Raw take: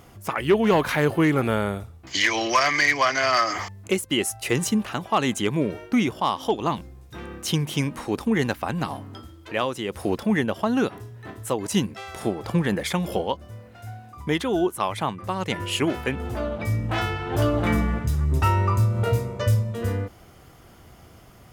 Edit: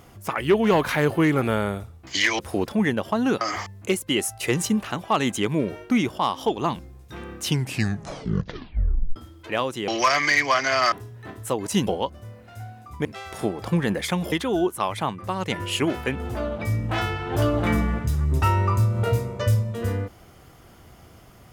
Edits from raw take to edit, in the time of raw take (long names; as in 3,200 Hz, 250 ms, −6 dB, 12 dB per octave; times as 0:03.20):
0:02.39–0:03.43: swap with 0:09.90–0:10.92
0:07.45: tape stop 1.73 s
0:13.14–0:14.32: move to 0:11.87